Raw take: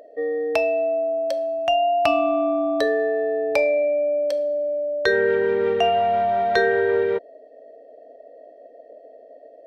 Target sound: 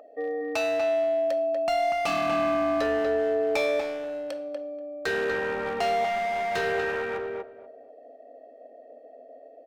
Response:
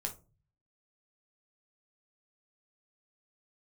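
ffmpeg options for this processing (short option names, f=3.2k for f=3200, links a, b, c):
-filter_complex "[0:a]equalizer=f=250:t=o:w=0.33:g=9,equalizer=f=800:t=o:w=0.33:g=11,equalizer=f=1.25k:t=o:w=0.33:g=12,equalizer=f=2.5k:t=o:w=0.33:g=9,volume=16.5dB,asoftclip=hard,volume=-16.5dB,asplit=2[a][b];[b]adelay=241,lowpass=f=2.4k:p=1,volume=-4dB,asplit=2[c][d];[d]adelay=241,lowpass=f=2.4k:p=1,volume=0.17,asplit=2[e][f];[f]adelay=241,lowpass=f=2.4k:p=1,volume=0.17[g];[c][e][g]amix=inputs=3:normalize=0[h];[a][h]amix=inputs=2:normalize=0,volume=-7dB"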